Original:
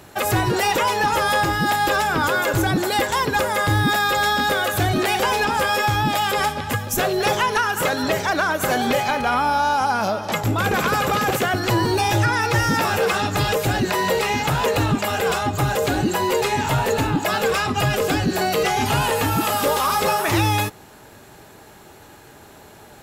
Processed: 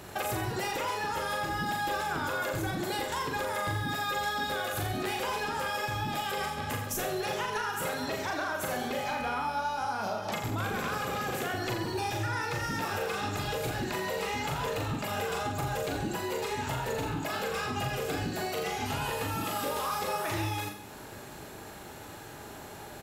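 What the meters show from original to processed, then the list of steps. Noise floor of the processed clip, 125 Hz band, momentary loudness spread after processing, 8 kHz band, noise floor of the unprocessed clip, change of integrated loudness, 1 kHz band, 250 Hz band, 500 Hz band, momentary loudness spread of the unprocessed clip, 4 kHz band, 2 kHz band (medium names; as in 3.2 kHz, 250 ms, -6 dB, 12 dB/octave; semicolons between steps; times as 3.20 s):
-45 dBFS, -12.5 dB, 3 LU, -11.5 dB, -45 dBFS, -12.5 dB, -12.5 dB, -12.5 dB, -12.0 dB, 2 LU, -12.0 dB, -12.5 dB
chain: compression, threshold -31 dBFS, peak gain reduction 15 dB; reverse bouncing-ball echo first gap 40 ms, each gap 1.1×, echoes 5; trim -2 dB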